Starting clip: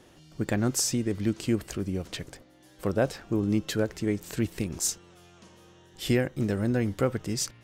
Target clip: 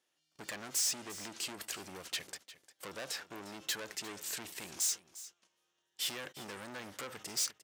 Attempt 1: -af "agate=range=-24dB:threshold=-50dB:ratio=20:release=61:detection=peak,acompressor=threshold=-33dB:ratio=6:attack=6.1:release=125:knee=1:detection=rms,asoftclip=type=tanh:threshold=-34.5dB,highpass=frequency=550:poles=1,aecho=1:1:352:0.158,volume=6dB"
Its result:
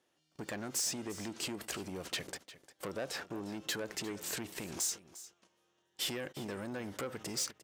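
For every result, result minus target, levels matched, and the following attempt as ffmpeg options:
downward compressor: peak gain reduction +7.5 dB; 500 Hz band +7.0 dB
-af "agate=range=-24dB:threshold=-50dB:ratio=20:release=61:detection=peak,acompressor=threshold=-24dB:ratio=6:attack=6.1:release=125:knee=1:detection=rms,asoftclip=type=tanh:threshold=-34.5dB,highpass=frequency=550:poles=1,aecho=1:1:352:0.158,volume=6dB"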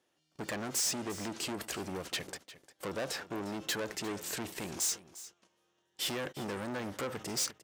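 500 Hz band +7.5 dB
-af "agate=range=-24dB:threshold=-50dB:ratio=20:release=61:detection=peak,acompressor=threshold=-24dB:ratio=6:attack=6.1:release=125:knee=1:detection=rms,asoftclip=type=tanh:threshold=-34.5dB,highpass=frequency=2100:poles=1,aecho=1:1:352:0.158,volume=6dB"

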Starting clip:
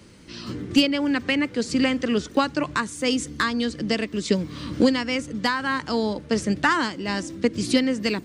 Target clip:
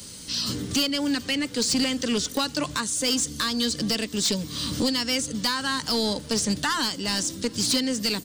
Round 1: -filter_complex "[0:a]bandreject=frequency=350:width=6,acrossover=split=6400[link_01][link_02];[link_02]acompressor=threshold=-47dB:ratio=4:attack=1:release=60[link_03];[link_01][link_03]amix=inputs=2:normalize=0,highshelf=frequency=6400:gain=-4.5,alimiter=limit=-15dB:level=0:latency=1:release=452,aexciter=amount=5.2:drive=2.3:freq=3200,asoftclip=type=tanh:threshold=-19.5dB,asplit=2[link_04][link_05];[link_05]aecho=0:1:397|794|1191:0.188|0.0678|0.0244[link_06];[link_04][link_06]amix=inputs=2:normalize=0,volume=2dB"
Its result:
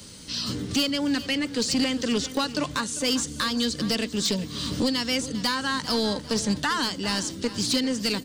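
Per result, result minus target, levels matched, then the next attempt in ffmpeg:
echo-to-direct +11 dB; 8,000 Hz band −3.0 dB
-filter_complex "[0:a]bandreject=frequency=350:width=6,acrossover=split=6400[link_01][link_02];[link_02]acompressor=threshold=-47dB:ratio=4:attack=1:release=60[link_03];[link_01][link_03]amix=inputs=2:normalize=0,highshelf=frequency=6400:gain=-4.5,alimiter=limit=-15dB:level=0:latency=1:release=452,aexciter=amount=5.2:drive=2.3:freq=3200,asoftclip=type=tanh:threshold=-19.5dB,asplit=2[link_04][link_05];[link_05]aecho=0:1:397|794:0.0531|0.0191[link_06];[link_04][link_06]amix=inputs=2:normalize=0,volume=2dB"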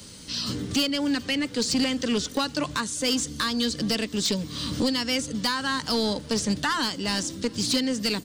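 8,000 Hz band −3.0 dB
-filter_complex "[0:a]bandreject=frequency=350:width=6,acrossover=split=6400[link_01][link_02];[link_02]acompressor=threshold=-47dB:ratio=4:attack=1:release=60[link_03];[link_01][link_03]amix=inputs=2:normalize=0,highshelf=frequency=6400:gain=5,alimiter=limit=-15dB:level=0:latency=1:release=452,aexciter=amount=5.2:drive=2.3:freq=3200,asoftclip=type=tanh:threshold=-19.5dB,asplit=2[link_04][link_05];[link_05]aecho=0:1:397|794:0.0531|0.0191[link_06];[link_04][link_06]amix=inputs=2:normalize=0,volume=2dB"

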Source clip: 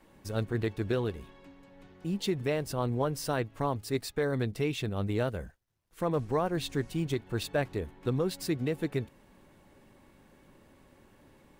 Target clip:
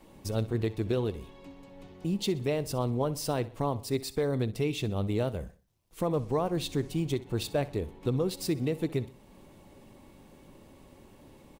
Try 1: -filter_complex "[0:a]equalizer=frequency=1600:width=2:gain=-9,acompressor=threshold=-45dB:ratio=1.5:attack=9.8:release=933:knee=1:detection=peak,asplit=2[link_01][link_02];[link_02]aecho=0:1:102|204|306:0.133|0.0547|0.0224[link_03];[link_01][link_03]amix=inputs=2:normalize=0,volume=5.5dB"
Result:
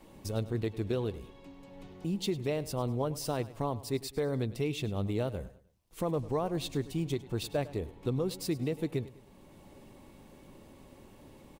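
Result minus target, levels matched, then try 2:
echo 39 ms late; downward compressor: peak gain reduction +3 dB
-filter_complex "[0:a]equalizer=frequency=1600:width=2:gain=-9,acompressor=threshold=-36.5dB:ratio=1.5:attack=9.8:release=933:knee=1:detection=peak,asplit=2[link_01][link_02];[link_02]aecho=0:1:63|126|189:0.133|0.0547|0.0224[link_03];[link_01][link_03]amix=inputs=2:normalize=0,volume=5.5dB"

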